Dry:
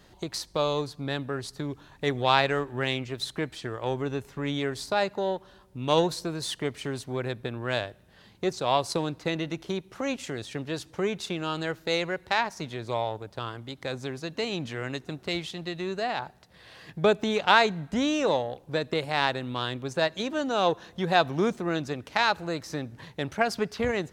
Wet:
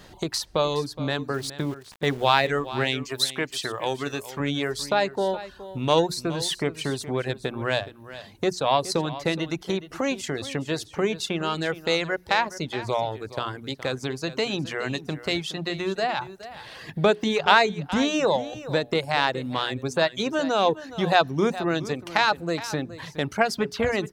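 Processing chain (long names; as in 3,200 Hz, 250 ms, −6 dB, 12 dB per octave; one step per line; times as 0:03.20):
mains-hum notches 60/120/180/240/300/360/420 Hz
reverb reduction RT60 0.62 s
0:03.05–0:04.40: spectral tilt +2.5 dB per octave
in parallel at +2 dB: downward compressor, threshold −36 dBFS, peak gain reduction 20.5 dB
0:01.34–0:02.47: on the sum: centre clipping without the shift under −41.5 dBFS
on a send: single-tap delay 419 ms −15 dB
on the sum: level +1.5 dB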